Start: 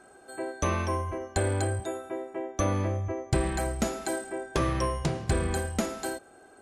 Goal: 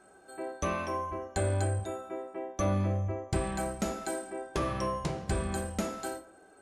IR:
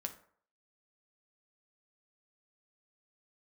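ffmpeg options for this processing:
-filter_complex "[1:a]atrim=start_sample=2205[a];[0:a][a]afir=irnorm=-1:irlink=0,volume=-2.5dB"

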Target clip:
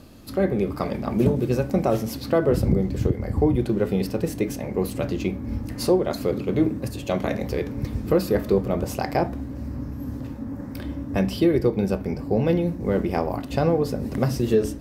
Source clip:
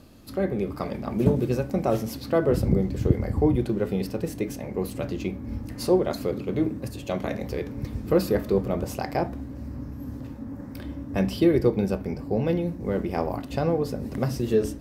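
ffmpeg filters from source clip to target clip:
-af "alimiter=limit=-13.5dB:level=0:latency=1:release=397,volume=4dB"

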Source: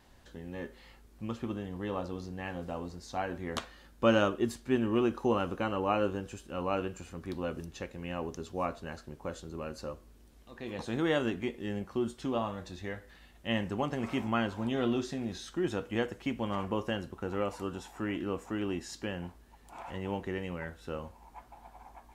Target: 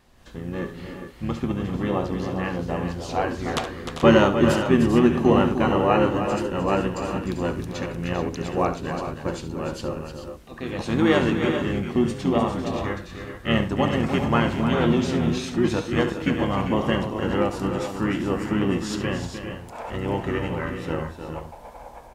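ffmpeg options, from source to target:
-filter_complex "[0:a]dynaudnorm=f=150:g=3:m=8dB,asplit=2[a][b];[b]asetrate=29433,aresample=44100,atempo=1.49831,volume=-3dB[c];[a][c]amix=inputs=2:normalize=0,aecho=1:1:70|304|394|406|431:0.237|0.355|0.282|0.126|0.282"

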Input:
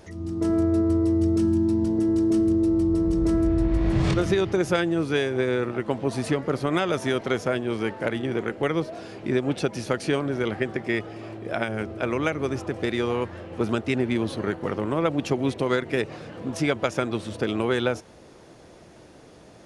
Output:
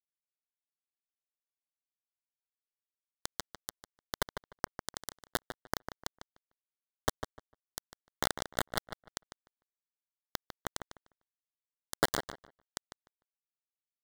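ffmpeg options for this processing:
-filter_complex "[0:a]lowpass=7.5k,aecho=1:1:2.8:0.78,aeval=exprs='(tanh(10*val(0)+0.15)-tanh(0.15))/10':c=same,equalizer=f=500:w=2.1:g=4.5,acompressor=threshold=-34dB:ratio=12,atempo=1.4,acrossover=split=310 2700:gain=0.178 1 0.251[a][b][c];[a][b][c]amix=inputs=3:normalize=0,aeval=exprs='val(0)+0.00251*(sin(2*PI*60*n/s)+sin(2*PI*2*60*n/s)/2+sin(2*PI*3*60*n/s)/3+sin(2*PI*4*60*n/s)/4+sin(2*PI*5*60*n/s)/5)':c=same,acrusher=bits=4:mix=0:aa=0.000001,asuperstop=centerf=2500:order=4:qfactor=2,asplit=2[d][e];[e]adelay=150,lowpass=f=2.7k:p=1,volume=-8dB,asplit=2[f][g];[g]adelay=150,lowpass=f=2.7k:p=1,volume=0.2,asplit=2[h][i];[i]adelay=150,lowpass=f=2.7k:p=1,volume=0.2[j];[f][h][j]amix=inputs=3:normalize=0[k];[d][k]amix=inputs=2:normalize=0,volume=12.5dB"

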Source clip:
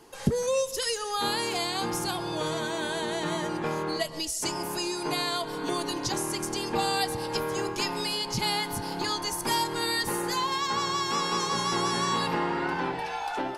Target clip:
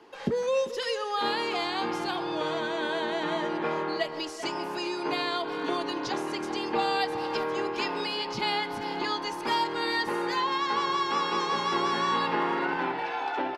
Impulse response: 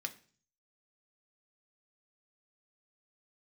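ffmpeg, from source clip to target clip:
-filter_complex "[0:a]acrossover=split=200 4300:gain=0.178 1 0.0794[a][b][c];[a][b][c]amix=inputs=3:normalize=0,asplit=2[d][e];[e]adelay=390,highpass=300,lowpass=3.4k,asoftclip=type=hard:threshold=-24dB,volume=-10dB[f];[d][f]amix=inputs=2:normalize=0,asplit=2[g][h];[1:a]atrim=start_sample=2205[i];[h][i]afir=irnorm=-1:irlink=0,volume=-13.5dB[j];[g][j]amix=inputs=2:normalize=0"

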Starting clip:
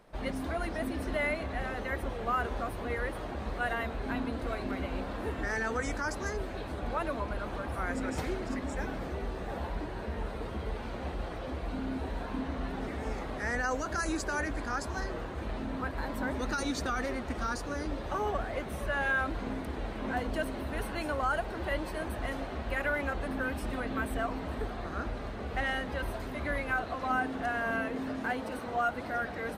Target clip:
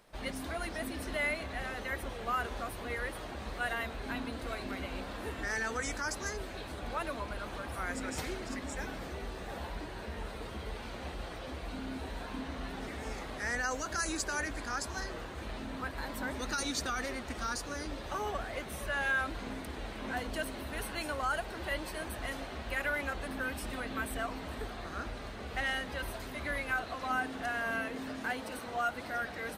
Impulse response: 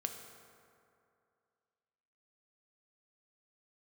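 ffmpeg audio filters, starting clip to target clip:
-af "highshelf=f=2k:g=11,volume=-5.5dB"

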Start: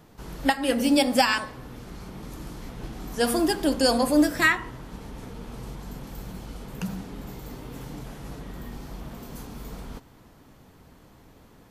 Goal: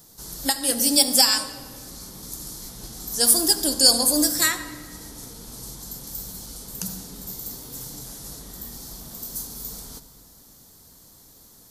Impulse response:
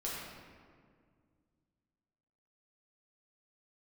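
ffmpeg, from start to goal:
-filter_complex "[0:a]aexciter=amount=7.9:drive=6.4:freq=3.9k,asplit=2[a][b];[1:a]atrim=start_sample=2205,adelay=71[c];[b][c]afir=irnorm=-1:irlink=0,volume=-15dB[d];[a][d]amix=inputs=2:normalize=0,volume=-5dB"

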